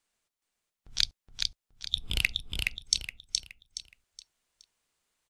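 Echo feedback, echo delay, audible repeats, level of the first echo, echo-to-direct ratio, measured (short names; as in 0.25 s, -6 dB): 33%, 0.42 s, 4, -3.5 dB, -3.0 dB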